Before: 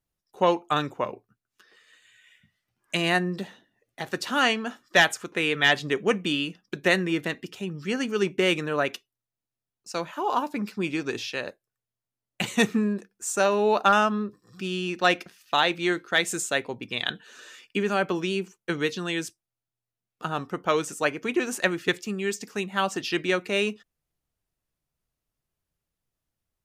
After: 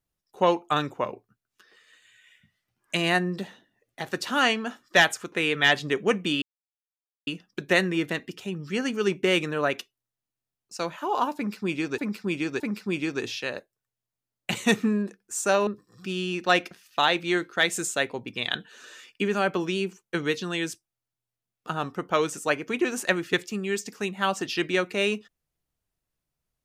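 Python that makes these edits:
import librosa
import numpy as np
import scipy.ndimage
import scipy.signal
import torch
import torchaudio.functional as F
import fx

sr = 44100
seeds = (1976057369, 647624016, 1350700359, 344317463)

y = fx.edit(x, sr, fx.insert_silence(at_s=6.42, length_s=0.85),
    fx.repeat(start_s=10.51, length_s=0.62, count=3),
    fx.cut(start_s=13.58, length_s=0.64), tone=tone)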